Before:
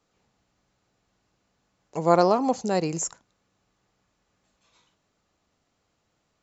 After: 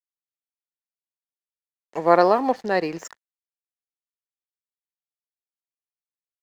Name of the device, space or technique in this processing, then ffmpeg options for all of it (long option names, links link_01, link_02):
pocket radio on a weak battery: -filter_complex "[0:a]asettb=1/sr,asplit=3[link_01][link_02][link_03];[link_01]atrim=end=2.044[link_04];[link_02]atrim=start=2.04:end=3.05,asetpts=PTS-STARTPTS,afade=type=in:duration=0.004:curve=qsin,afade=type=out:start_time=1.006:duration=0.004:curve=qsin,lowpass=frequency=5300:width=0.5412,lowpass=frequency=5300:width=1.3066[link_05];[link_03]atrim=start=3.046[link_06];[link_04][link_05]acrossfade=duration=0.004:curve1=hsin:curve2=qsin[link_07];[link_07][link_06]acrossfade=duration=0.004:curve1=qsin:curve2=hsin,highpass=280,lowpass=4500,aeval=exprs='sgn(val(0))*max(abs(val(0))-0.00282,0)':channel_layout=same,equalizer=frequency=1800:width_type=o:width=0.29:gain=11.5,volume=3.5dB"